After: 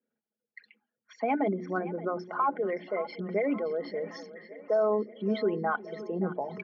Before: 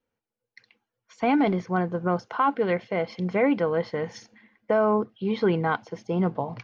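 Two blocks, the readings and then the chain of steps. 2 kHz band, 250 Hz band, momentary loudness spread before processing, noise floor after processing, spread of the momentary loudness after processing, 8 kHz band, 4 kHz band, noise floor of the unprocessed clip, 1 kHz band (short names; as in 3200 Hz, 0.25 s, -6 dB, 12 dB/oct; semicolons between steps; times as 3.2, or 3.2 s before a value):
-6.0 dB, -7.5 dB, 7 LU, under -85 dBFS, 9 LU, n/a, -7.5 dB, under -85 dBFS, -5.0 dB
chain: formant sharpening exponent 2; notches 60/120/180/240/300/360 Hz; comb 4.8 ms, depth 37%; in parallel at -3 dB: compressor, threshold -29 dBFS, peak gain reduction 12.5 dB; on the sum: speaker cabinet 220–5200 Hz, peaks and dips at 230 Hz +5 dB, 450 Hz -4 dB, 960 Hz -5 dB, 1700 Hz +7 dB; on a send: split-band echo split 350 Hz, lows 0.35 s, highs 0.572 s, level -15 dB; on the sum: gain -6 dB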